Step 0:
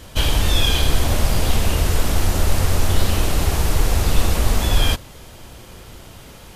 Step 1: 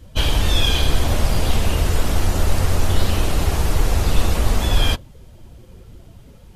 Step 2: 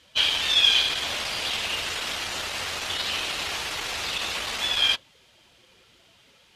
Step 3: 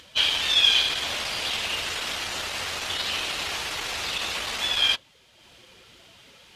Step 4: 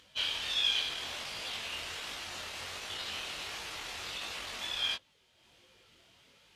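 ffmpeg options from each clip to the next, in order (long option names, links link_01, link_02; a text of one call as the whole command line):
ffmpeg -i in.wav -af "afftdn=noise_reduction=14:noise_floor=-36" out.wav
ffmpeg -i in.wav -af "acontrast=31,bandpass=frequency=3100:width_type=q:width=1.1:csg=0" out.wav
ffmpeg -i in.wav -af "acompressor=mode=upward:threshold=-44dB:ratio=2.5" out.wav
ffmpeg -i in.wav -af "flanger=delay=19:depth=6.2:speed=1.4,volume=-8dB" out.wav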